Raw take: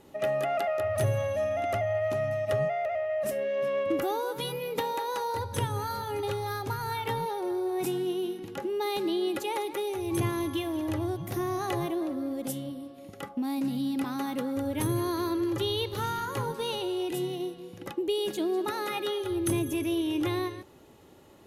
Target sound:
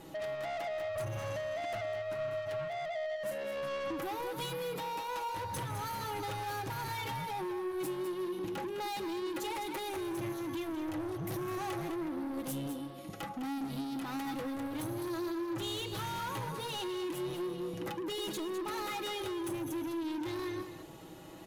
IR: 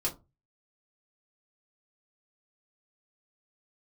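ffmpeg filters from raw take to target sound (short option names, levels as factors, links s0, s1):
-af "aecho=1:1:6.2:0.6,acompressor=threshold=0.0251:ratio=6,bandreject=f=460:w=12,asoftclip=type=tanh:threshold=0.0106,aecho=1:1:206:0.335,volume=1.58"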